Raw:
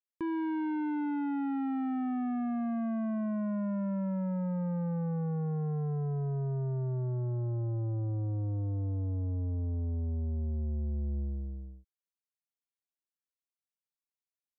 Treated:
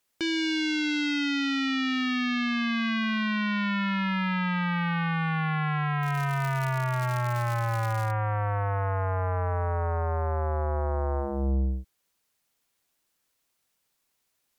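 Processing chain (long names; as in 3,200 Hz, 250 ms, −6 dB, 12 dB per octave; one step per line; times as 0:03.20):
0:06.02–0:08.10: surface crackle 290 per second −46 dBFS
sine wavefolder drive 11 dB, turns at −28 dBFS
level +5 dB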